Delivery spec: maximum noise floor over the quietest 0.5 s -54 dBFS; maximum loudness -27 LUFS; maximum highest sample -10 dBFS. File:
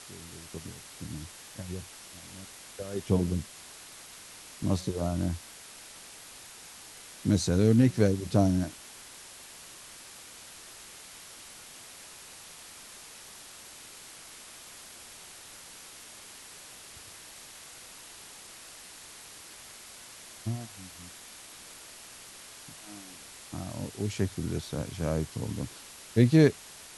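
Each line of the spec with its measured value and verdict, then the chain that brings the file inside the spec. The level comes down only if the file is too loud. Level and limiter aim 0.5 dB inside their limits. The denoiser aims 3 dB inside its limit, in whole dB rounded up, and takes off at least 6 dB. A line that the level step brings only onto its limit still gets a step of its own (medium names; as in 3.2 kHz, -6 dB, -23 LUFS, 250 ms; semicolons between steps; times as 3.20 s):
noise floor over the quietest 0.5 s -48 dBFS: fail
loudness -29.5 LUFS: pass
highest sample -8.0 dBFS: fail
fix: noise reduction 9 dB, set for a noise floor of -48 dBFS; peak limiter -10.5 dBFS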